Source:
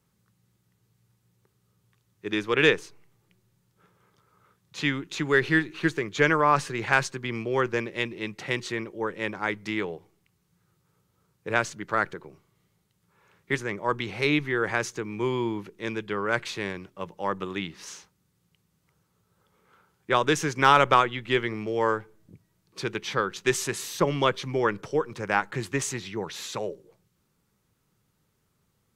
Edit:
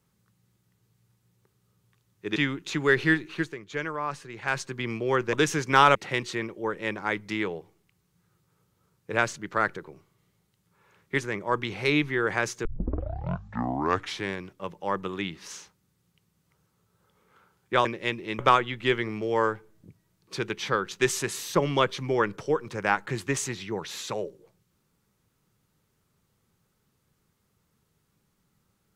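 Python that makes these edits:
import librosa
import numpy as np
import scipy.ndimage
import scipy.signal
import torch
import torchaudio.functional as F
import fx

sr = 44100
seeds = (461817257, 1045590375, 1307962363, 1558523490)

y = fx.edit(x, sr, fx.cut(start_s=2.36, length_s=2.45),
    fx.fade_down_up(start_s=5.67, length_s=1.53, db=-10.5, fade_s=0.34),
    fx.swap(start_s=7.78, length_s=0.54, other_s=20.22, other_length_s=0.62),
    fx.tape_start(start_s=15.02, length_s=1.66), tone=tone)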